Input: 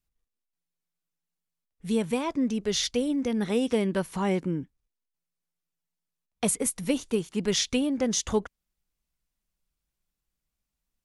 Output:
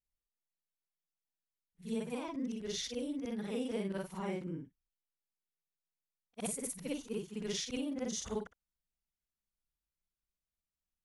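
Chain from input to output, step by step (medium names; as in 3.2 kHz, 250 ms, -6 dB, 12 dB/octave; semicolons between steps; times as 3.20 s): short-time spectra conjugated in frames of 124 ms; trim -8.5 dB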